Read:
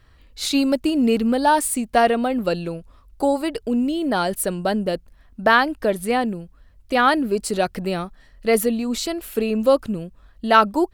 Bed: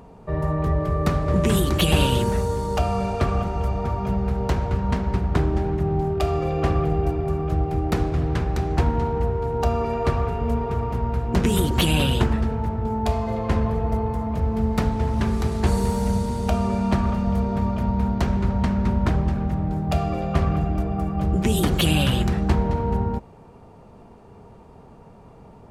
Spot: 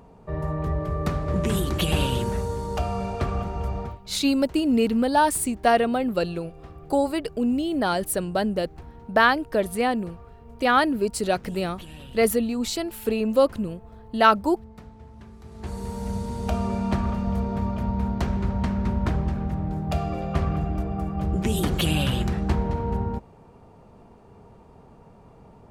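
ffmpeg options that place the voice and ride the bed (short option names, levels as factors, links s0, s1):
-filter_complex "[0:a]adelay=3700,volume=0.75[s0];[1:a]volume=5.62,afade=t=out:st=3.79:d=0.2:silence=0.11885,afade=t=in:st=15.42:d=1.15:silence=0.105925[s1];[s0][s1]amix=inputs=2:normalize=0"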